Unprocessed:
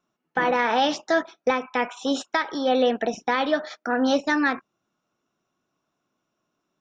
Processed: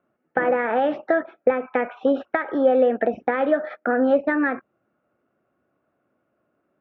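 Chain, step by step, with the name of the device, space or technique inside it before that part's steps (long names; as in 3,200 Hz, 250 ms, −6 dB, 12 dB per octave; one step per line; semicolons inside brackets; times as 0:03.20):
bass amplifier (downward compressor 4 to 1, threshold −25 dBFS, peak gain reduction 8 dB; loudspeaker in its box 62–2,000 Hz, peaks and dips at 76 Hz +6 dB, 170 Hz −5 dB, 550 Hz +6 dB, 1,000 Hz −9 dB)
level +7 dB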